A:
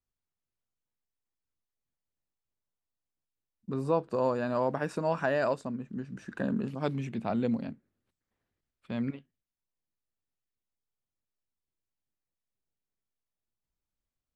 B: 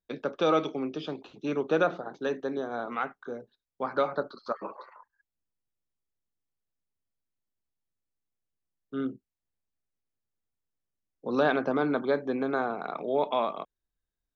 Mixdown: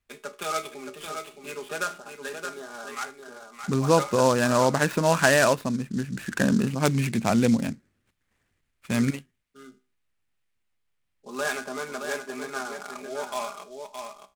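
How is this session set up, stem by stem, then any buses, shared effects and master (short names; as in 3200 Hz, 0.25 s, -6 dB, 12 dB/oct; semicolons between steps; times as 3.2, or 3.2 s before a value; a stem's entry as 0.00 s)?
+1.5 dB, 0.00 s, no send, no echo send, low shelf 320 Hz +10 dB
-8.5 dB, 0.00 s, no send, echo send -6.5 dB, comb 4.9 ms, depth 90%; resonator 64 Hz, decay 0.35 s, harmonics all, mix 60%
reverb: off
echo: echo 0.62 s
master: bell 2300 Hz +14.5 dB 2.2 oct; noise-modulated delay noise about 5400 Hz, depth 0.039 ms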